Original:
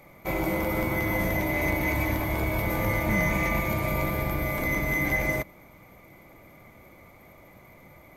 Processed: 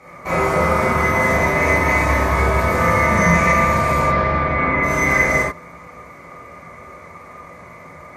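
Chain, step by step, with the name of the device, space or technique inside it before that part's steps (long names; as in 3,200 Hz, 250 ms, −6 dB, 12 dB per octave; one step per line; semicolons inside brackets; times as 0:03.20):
car door speaker (loudspeaker in its box 80–9,500 Hz, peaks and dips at 310 Hz −7 dB, 1,200 Hz +9 dB, 1,700 Hz +5 dB, 3,300 Hz −8 dB)
0:04.02–0:04.82: low-pass filter 5,400 Hz → 2,600 Hz 24 dB per octave
reverb whose tail is shaped and stops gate 110 ms flat, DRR −7.5 dB
level +3.5 dB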